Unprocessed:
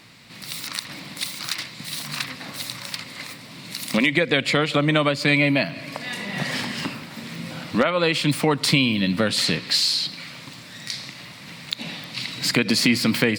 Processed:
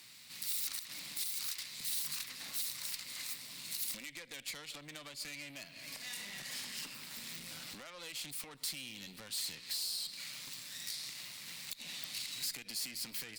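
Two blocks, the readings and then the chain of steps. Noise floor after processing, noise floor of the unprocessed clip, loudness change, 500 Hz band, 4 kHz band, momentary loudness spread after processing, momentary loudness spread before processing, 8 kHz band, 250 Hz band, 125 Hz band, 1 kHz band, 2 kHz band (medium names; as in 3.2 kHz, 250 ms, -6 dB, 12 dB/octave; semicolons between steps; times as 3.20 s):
-55 dBFS, -42 dBFS, -17.5 dB, -33.0 dB, -16.0 dB, 10 LU, 17 LU, -8.0 dB, -33.0 dB, -32.0 dB, -26.5 dB, -22.5 dB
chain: compression 6:1, threshold -31 dBFS, peak gain reduction 16 dB; valve stage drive 33 dB, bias 0.65; pre-emphasis filter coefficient 0.9; trim +3.5 dB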